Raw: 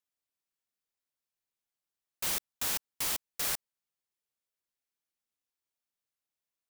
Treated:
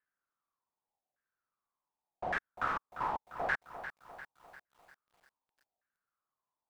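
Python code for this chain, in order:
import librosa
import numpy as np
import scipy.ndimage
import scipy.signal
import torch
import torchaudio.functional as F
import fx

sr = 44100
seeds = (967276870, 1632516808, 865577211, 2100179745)

y = fx.filter_lfo_lowpass(x, sr, shape='saw_down', hz=0.86, low_hz=690.0, high_hz=1700.0, q=7.3)
y = fx.echo_crushed(y, sr, ms=348, feedback_pct=55, bits=10, wet_db=-11.0)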